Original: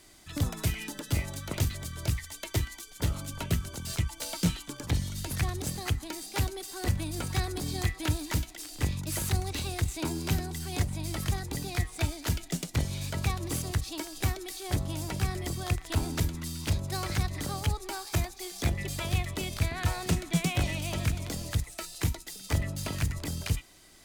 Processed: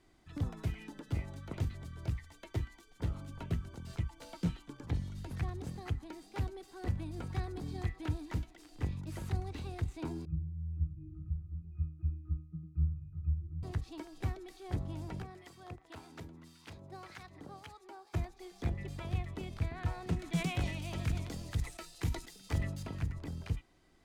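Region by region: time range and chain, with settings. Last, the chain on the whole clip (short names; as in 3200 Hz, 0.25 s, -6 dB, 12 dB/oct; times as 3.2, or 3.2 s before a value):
10.25–13.63 RIAA curve playback + fixed phaser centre 1500 Hz, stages 4 + octave resonator D#, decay 0.58 s
15.22–18.14 HPF 420 Hz 6 dB/oct + harmonic tremolo 1.8 Hz, crossover 970 Hz
20.19–22.83 high shelf 2400 Hz +9.5 dB + sustainer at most 63 dB/s
whole clip: LPF 1100 Hz 6 dB/oct; notch 600 Hz, Q 12; gain -6 dB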